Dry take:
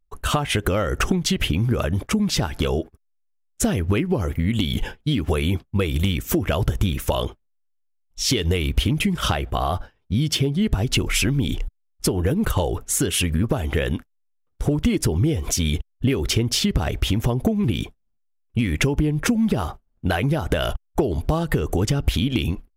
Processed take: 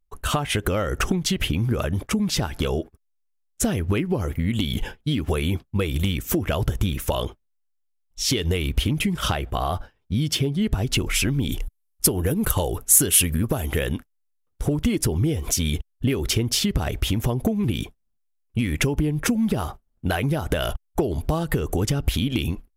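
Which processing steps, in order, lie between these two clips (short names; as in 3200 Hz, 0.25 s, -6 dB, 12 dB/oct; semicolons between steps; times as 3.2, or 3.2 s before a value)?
bell 12000 Hz +3 dB 1 oct, from 11.51 s +15 dB, from 13.86 s +6 dB; gain -2 dB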